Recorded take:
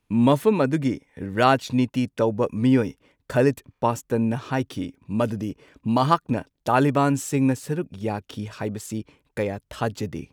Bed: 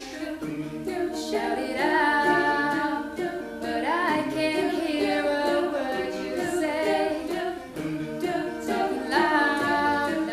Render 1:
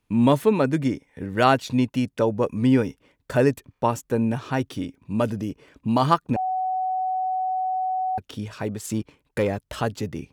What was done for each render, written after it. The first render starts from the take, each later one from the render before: 6.36–8.18 s: bleep 748 Hz -22 dBFS; 8.84–9.82 s: waveshaping leveller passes 1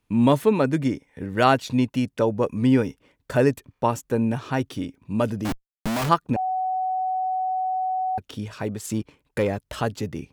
5.45–6.09 s: Schmitt trigger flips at -36 dBFS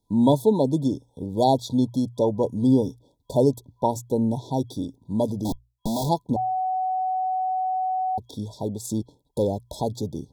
hum notches 60/120 Hz; FFT band-reject 1–3.3 kHz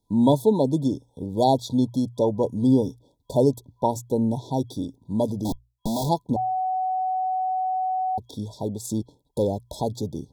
no audible change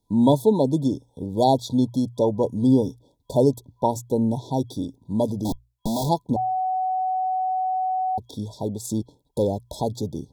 trim +1 dB

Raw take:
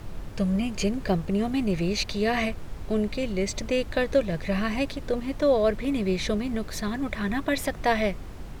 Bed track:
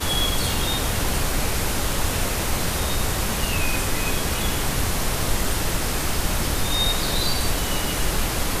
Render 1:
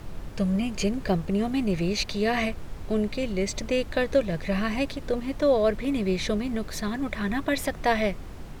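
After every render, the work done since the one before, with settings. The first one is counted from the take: de-hum 50 Hz, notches 2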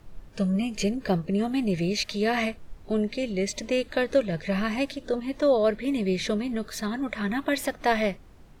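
noise print and reduce 12 dB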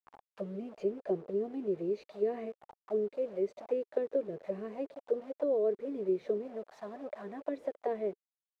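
word length cut 6-bit, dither none; auto-wah 400–1200 Hz, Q 4.6, down, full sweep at -22 dBFS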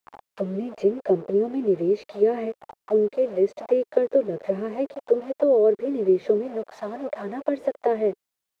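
trim +11.5 dB

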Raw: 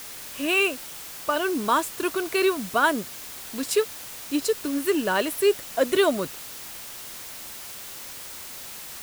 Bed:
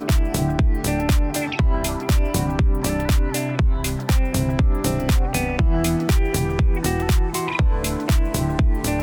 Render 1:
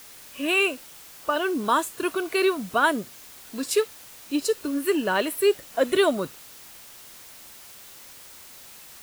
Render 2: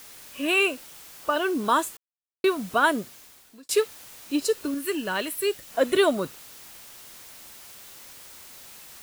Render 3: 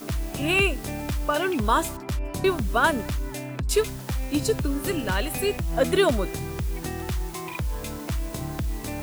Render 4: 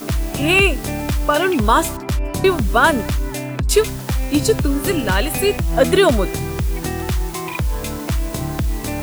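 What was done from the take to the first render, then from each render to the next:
noise print and reduce 7 dB
1.97–2.44 s: mute; 2.98–3.69 s: fade out; 4.74–5.68 s: peaking EQ 540 Hz -6.5 dB 2.9 oct
add bed -10.5 dB
trim +8 dB; peak limiter -3 dBFS, peak gain reduction 2 dB

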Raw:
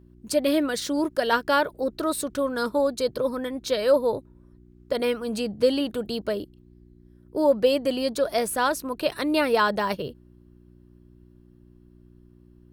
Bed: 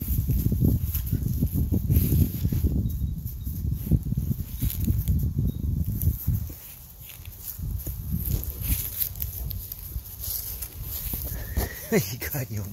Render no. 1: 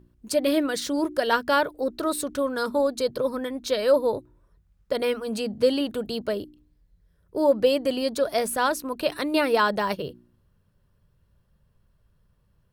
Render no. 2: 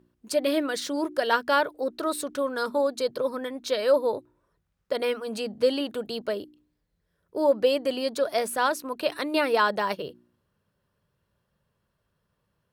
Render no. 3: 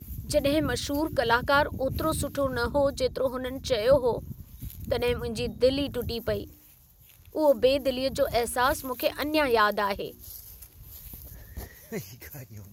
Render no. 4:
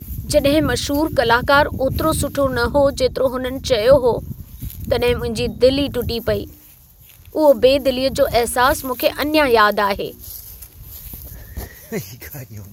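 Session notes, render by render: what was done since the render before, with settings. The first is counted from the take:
de-hum 60 Hz, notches 6
high-pass 340 Hz 6 dB/octave; treble shelf 6 kHz -4.5 dB
add bed -12.5 dB
trim +9.5 dB; peak limiter -2 dBFS, peak gain reduction 2 dB

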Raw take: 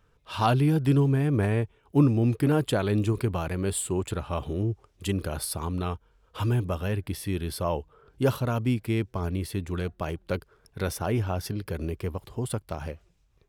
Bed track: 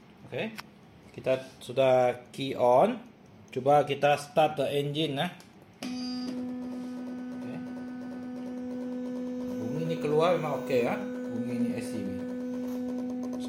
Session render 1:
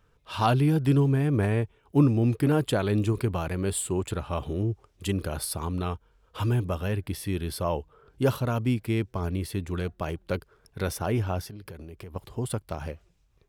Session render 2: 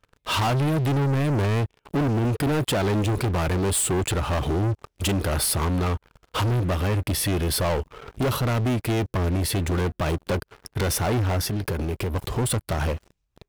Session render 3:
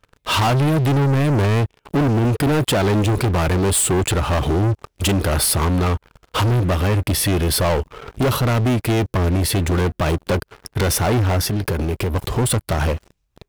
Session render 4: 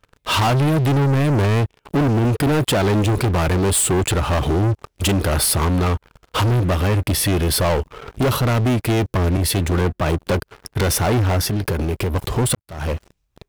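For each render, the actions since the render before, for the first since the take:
11.42–12.16 s: compression 12:1, threshold -37 dBFS
compression 2:1, threshold -34 dBFS, peak gain reduction 10.5 dB; waveshaping leveller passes 5
trim +5.5 dB
9.37–10.19 s: three bands expanded up and down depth 40%; 12.55–12.95 s: fade in quadratic

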